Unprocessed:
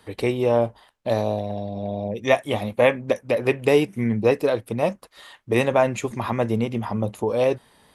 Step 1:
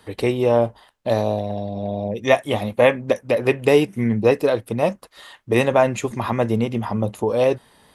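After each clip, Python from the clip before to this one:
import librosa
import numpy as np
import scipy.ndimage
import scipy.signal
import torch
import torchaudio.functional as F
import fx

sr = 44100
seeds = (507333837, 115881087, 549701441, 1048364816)

y = fx.notch(x, sr, hz=2300.0, q=26.0)
y = y * 10.0 ** (2.5 / 20.0)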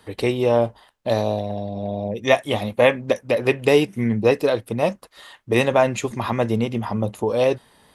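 y = fx.dynamic_eq(x, sr, hz=4200.0, q=0.88, threshold_db=-39.0, ratio=4.0, max_db=4)
y = y * 10.0 ** (-1.0 / 20.0)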